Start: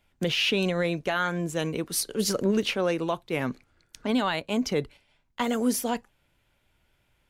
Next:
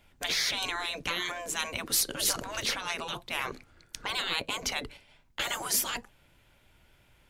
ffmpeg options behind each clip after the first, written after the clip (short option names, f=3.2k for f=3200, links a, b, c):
-af "afftfilt=real='re*lt(hypot(re,im),0.0708)':imag='im*lt(hypot(re,im),0.0708)':win_size=1024:overlap=0.75,volume=6.5dB"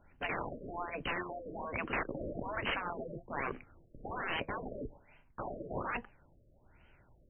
-af "acrusher=samples=3:mix=1:aa=0.000001,aeval=exprs='(mod(13.3*val(0)+1,2)-1)/13.3':c=same,afftfilt=real='re*lt(b*sr/1024,630*pow(3200/630,0.5+0.5*sin(2*PI*1.2*pts/sr)))':imag='im*lt(b*sr/1024,630*pow(3200/630,0.5+0.5*sin(2*PI*1.2*pts/sr)))':win_size=1024:overlap=0.75"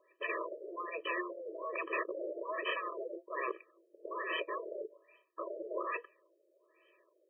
-af "afftfilt=real='re*eq(mod(floor(b*sr/1024/330),2),1)':imag='im*eq(mod(floor(b*sr/1024/330),2),1)':win_size=1024:overlap=0.75,volume=3dB"